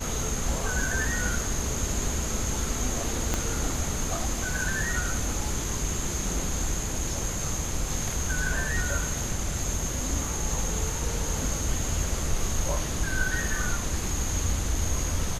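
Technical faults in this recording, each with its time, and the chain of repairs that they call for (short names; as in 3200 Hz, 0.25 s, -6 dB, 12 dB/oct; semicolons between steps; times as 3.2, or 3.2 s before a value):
3.34 pop -11 dBFS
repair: de-click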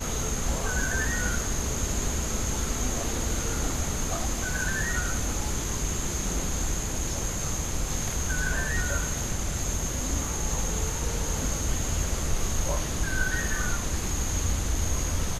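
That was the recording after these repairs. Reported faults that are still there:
3.34 pop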